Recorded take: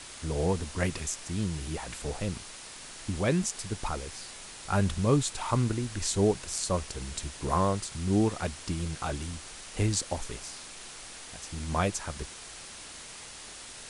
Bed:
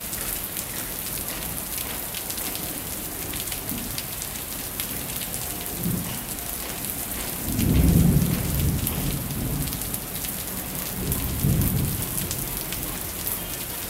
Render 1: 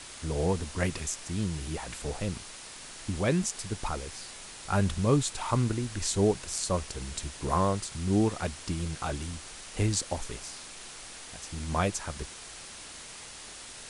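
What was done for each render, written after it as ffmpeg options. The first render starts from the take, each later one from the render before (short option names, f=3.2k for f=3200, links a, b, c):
-af anull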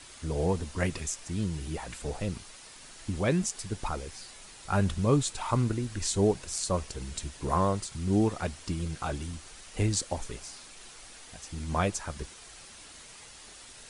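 -af "afftdn=nr=6:nf=-45"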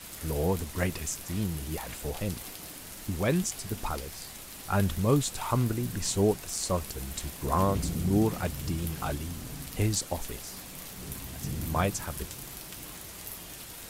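-filter_complex "[1:a]volume=-14dB[a];[0:a][a]amix=inputs=2:normalize=0"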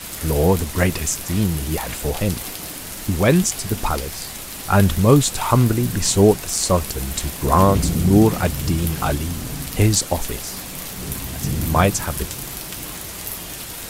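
-af "volume=11.5dB,alimiter=limit=-1dB:level=0:latency=1"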